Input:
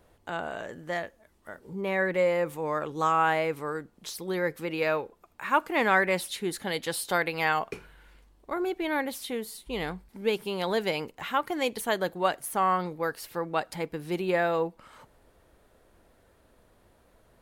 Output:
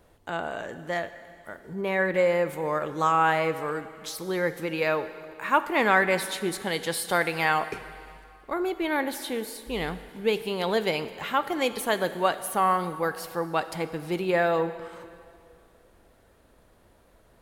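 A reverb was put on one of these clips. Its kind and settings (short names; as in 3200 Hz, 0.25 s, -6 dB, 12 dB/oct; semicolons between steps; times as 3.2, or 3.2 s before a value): plate-style reverb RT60 2.3 s, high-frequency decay 1×, DRR 11.5 dB; gain +2 dB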